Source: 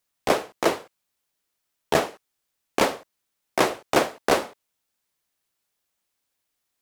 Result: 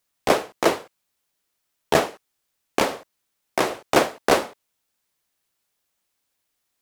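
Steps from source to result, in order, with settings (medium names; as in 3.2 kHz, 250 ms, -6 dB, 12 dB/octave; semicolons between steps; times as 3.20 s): 2.79–3.82 s: compression 3:1, threshold -20 dBFS, peak gain reduction 5 dB; trim +2.5 dB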